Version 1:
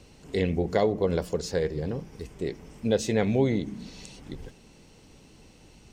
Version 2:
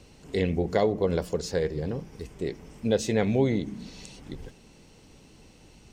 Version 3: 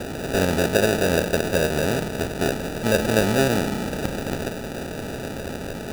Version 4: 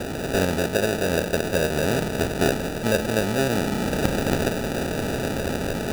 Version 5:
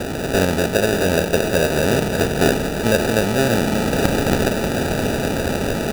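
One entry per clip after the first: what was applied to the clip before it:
nothing audible
per-bin compression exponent 0.4; high shelf 6100 Hz +8.5 dB; sample-and-hold 41×
vocal rider within 5 dB 0.5 s
echo 0.587 s -8 dB; gain +4.5 dB

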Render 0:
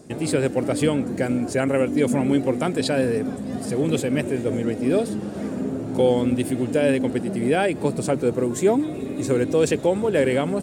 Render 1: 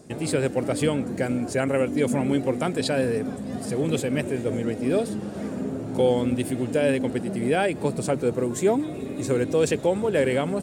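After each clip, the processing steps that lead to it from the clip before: bell 300 Hz -2.5 dB 0.75 oct; gain -1.5 dB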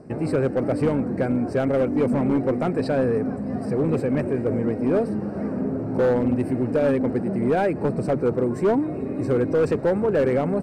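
in parallel at -3 dB: soft clip -24 dBFS, distortion -9 dB; on the sum: running mean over 13 samples; hard clip -15 dBFS, distortion -20 dB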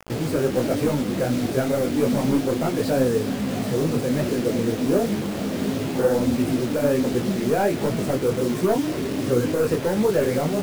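in parallel at 0 dB: limiter -22 dBFS, peak gain reduction 7 dB; on the sum: bit-crush 5-bit; detuned doubles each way 48 cents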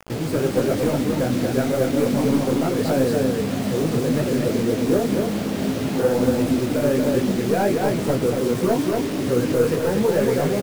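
echo 0.234 s -3.5 dB

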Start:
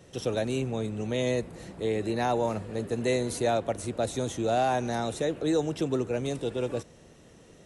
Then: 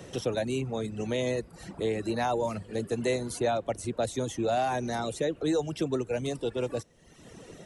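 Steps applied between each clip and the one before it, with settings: reverb removal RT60 0.87 s; three-band squash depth 40%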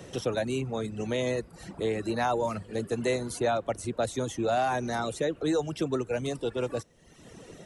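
dynamic EQ 1300 Hz, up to +5 dB, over -46 dBFS, Q 1.8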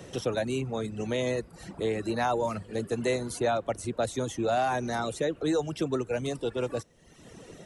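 nothing audible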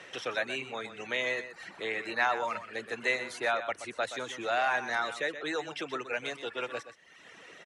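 band-pass 2000 Hz, Q 1.6; echo 0.125 s -11.5 dB; gain +8.5 dB

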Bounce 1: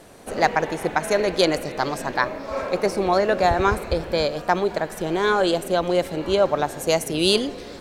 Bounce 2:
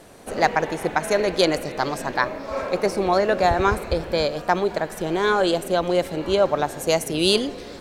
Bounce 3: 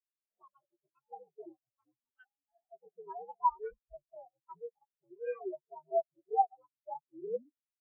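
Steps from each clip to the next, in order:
nothing audible
inharmonic rescaling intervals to 129%; de-hum 89.12 Hz, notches 3; spectral expander 4:1; gain -6.5 dB

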